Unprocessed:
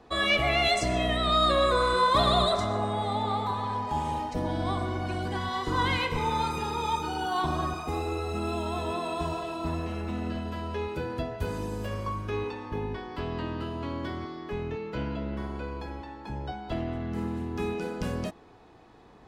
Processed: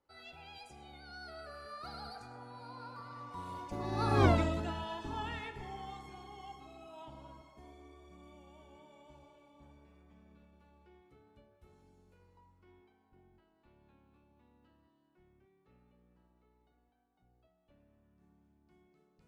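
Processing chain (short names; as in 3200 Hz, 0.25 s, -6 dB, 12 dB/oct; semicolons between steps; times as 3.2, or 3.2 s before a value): Doppler pass-by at 4.26, 50 m/s, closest 3.6 m; gain +8 dB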